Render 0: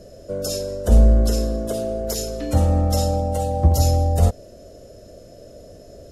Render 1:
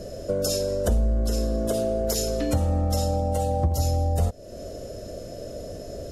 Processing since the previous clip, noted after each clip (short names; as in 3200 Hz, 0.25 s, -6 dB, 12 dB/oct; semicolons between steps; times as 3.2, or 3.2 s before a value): compressor 4:1, threshold -29 dBFS, peak gain reduction 17 dB; gain +6.5 dB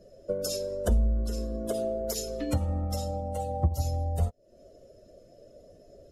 per-bin expansion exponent 1.5; upward expander 1.5:1, over -36 dBFS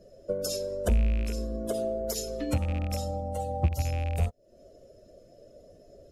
rattling part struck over -27 dBFS, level -31 dBFS